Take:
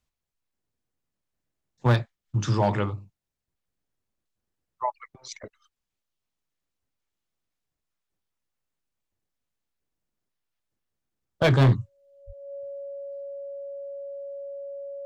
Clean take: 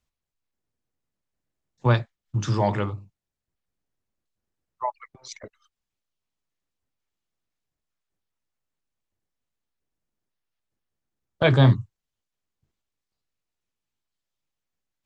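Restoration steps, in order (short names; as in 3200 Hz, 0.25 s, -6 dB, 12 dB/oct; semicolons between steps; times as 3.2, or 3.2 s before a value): clip repair -13.5 dBFS; notch 560 Hz, Q 30; 12.26–12.38 HPF 140 Hz 24 dB/oct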